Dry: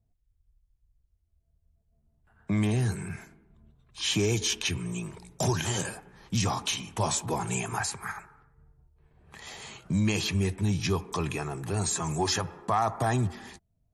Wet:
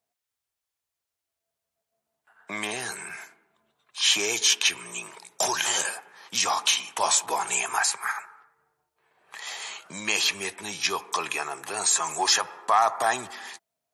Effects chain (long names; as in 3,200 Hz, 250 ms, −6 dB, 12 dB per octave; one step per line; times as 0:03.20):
high-pass filter 780 Hz 12 dB per octave
level +8 dB